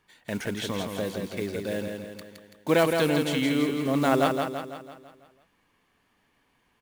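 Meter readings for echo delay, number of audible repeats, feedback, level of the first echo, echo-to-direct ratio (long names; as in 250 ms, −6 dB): 166 ms, 6, 52%, −5.0 dB, −3.5 dB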